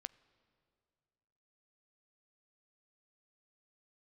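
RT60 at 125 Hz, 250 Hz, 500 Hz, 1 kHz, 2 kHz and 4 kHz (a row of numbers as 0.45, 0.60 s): 2.5, 2.2, 2.3, 2.1, 2.0, 2.0 s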